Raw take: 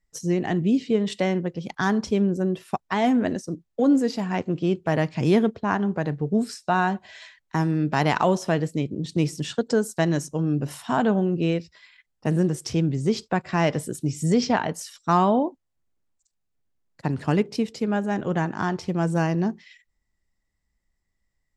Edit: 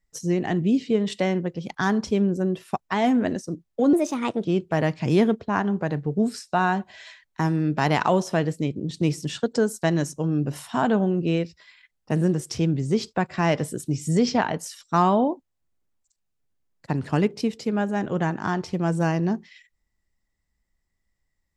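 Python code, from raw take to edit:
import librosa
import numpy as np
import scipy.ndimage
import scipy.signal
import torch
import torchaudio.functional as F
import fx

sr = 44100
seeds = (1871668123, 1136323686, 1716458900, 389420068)

y = fx.edit(x, sr, fx.speed_span(start_s=3.93, length_s=0.67, speed=1.29), tone=tone)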